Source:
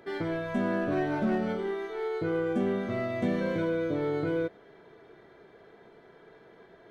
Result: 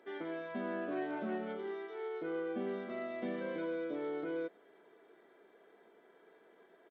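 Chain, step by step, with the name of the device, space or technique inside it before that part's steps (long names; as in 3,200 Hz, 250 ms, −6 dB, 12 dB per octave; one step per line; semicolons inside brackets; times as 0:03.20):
high-pass filter 55 Hz
Bluetooth headset (high-pass filter 230 Hz 24 dB per octave; downsampling to 8,000 Hz; level −8.5 dB; SBC 64 kbit/s 32,000 Hz)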